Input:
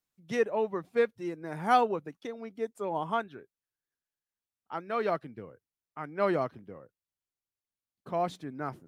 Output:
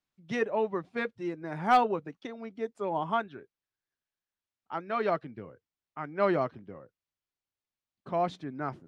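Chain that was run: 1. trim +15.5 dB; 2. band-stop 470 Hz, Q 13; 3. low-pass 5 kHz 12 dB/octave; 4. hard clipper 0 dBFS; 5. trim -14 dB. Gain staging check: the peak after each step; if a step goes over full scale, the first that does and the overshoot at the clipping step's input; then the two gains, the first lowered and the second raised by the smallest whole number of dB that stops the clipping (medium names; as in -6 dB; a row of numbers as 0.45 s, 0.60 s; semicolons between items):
+4.0 dBFS, +3.5 dBFS, +3.5 dBFS, 0.0 dBFS, -14.0 dBFS; step 1, 3.5 dB; step 1 +11.5 dB, step 5 -10 dB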